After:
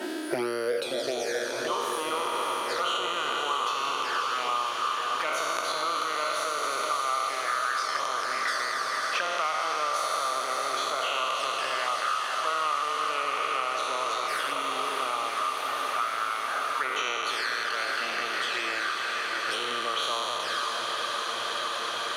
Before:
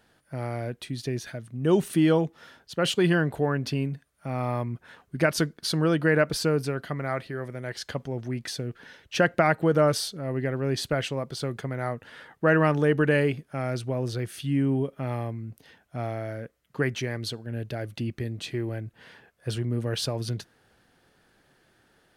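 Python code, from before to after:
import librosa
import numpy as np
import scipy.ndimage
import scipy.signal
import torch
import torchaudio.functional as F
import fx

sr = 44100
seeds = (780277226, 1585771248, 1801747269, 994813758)

p1 = fx.spec_trails(x, sr, decay_s=2.82)
p2 = fx.high_shelf(p1, sr, hz=2600.0, db=-5.5)
p3 = fx.over_compress(p2, sr, threshold_db=-25.0, ratio=-1.0)
p4 = p2 + (p3 * librosa.db_to_amplitude(2.0))
p5 = fx.cheby_harmonics(p4, sr, harmonics=(3,), levels_db=(-20,), full_scale_db=-1.5)
p6 = fx.env_flanger(p5, sr, rest_ms=3.2, full_db=-17.0)
p7 = fx.filter_sweep_highpass(p6, sr, from_hz=330.0, to_hz=1200.0, start_s=0.27, end_s=1.82, q=5.7)
p8 = p7 + fx.echo_diffused(p7, sr, ms=574, feedback_pct=78, wet_db=-8.0, dry=0)
p9 = fx.band_squash(p8, sr, depth_pct=100)
y = p9 * librosa.db_to_amplitude(-4.0)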